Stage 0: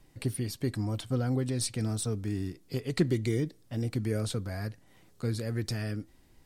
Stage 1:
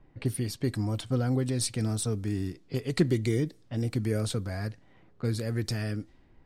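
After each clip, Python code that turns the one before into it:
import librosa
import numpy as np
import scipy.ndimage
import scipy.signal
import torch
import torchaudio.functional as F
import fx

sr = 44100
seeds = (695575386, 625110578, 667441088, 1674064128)

y = fx.env_lowpass(x, sr, base_hz=1600.0, full_db=-29.0)
y = y * 10.0 ** (2.0 / 20.0)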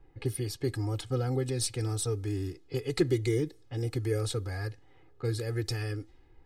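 y = x + 0.89 * np.pad(x, (int(2.4 * sr / 1000.0), 0))[:len(x)]
y = y * 10.0 ** (-3.5 / 20.0)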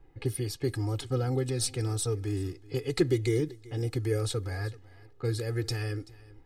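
y = x + 10.0 ** (-21.0 / 20.0) * np.pad(x, (int(383 * sr / 1000.0), 0))[:len(x)]
y = y * 10.0 ** (1.0 / 20.0)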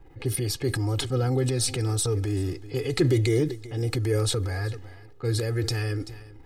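y = fx.transient(x, sr, attack_db=-3, sustain_db=7)
y = y * 10.0 ** (4.5 / 20.0)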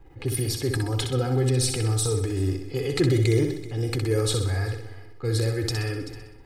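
y = fx.echo_feedback(x, sr, ms=63, feedback_pct=50, wet_db=-6.5)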